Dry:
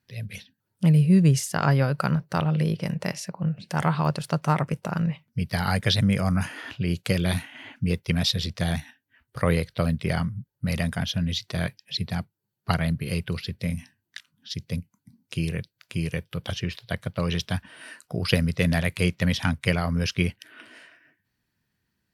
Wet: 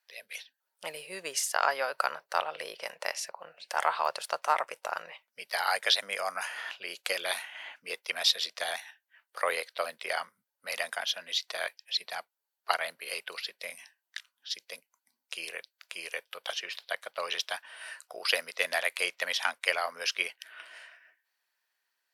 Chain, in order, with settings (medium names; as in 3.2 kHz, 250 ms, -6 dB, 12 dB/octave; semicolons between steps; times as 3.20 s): high-pass 600 Hz 24 dB/octave